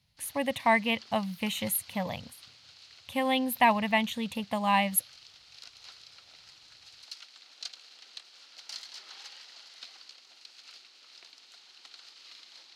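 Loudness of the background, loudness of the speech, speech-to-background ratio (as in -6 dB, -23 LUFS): -48.5 LUFS, -28.5 LUFS, 20.0 dB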